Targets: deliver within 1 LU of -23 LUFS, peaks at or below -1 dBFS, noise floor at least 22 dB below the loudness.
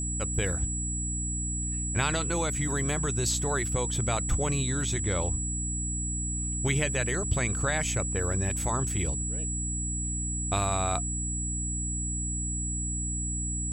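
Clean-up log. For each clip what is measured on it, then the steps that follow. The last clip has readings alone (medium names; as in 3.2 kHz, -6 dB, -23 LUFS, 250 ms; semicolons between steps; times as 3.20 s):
hum 60 Hz; highest harmonic 300 Hz; hum level -31 dBFS; steady tone 7.8 kHz; tone level -32 dBFS; loudness -28.5 LUFS; peak level -12.5 dBFS; loudness target -23.0 LUFS
-> de-hum 60 Hz, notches 5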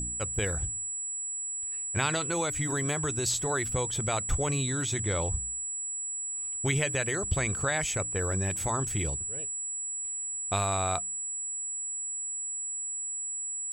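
hum not found; steady tone 7.8 kHz; tone level -32 dBFS
-> band-stop 7.8 kHz, Q 30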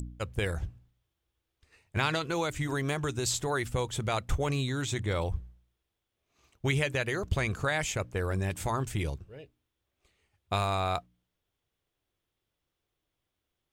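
steady tone not found; loudness -31.5 LUFS; peak level -13.0 dBFS; loudness target -23.0 LUFS
-> trim +8.5 dB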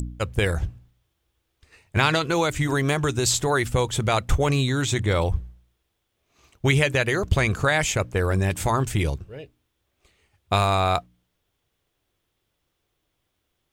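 loudness -23.0 LUFS; peak level -4.5 dBFS; noise floor -76 dBFS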